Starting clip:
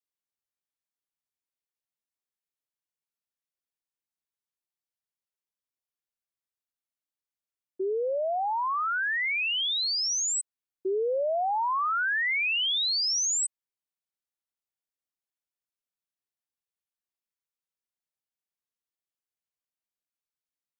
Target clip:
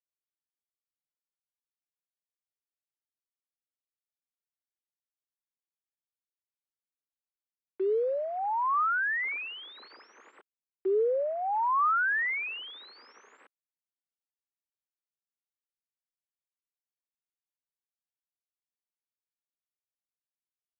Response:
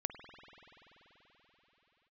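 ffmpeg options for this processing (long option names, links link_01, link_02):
-af "acrusher=bits=6:mix=0:aa=0.000001,highpass=frequency=300:width=0.5412,highpass=frequency=300:width=1.3066,equalizer=frequency=430:width_type=q:width=4:gain=3,equalizer=frequency=680:width_type=q:width=4:gain=-7,equalizer=frequency=1200:width_type=q:width=4:gain=3,lowpass=frequency=2000:width=0.5412,lowpass=frequency=2000:width=1.3066"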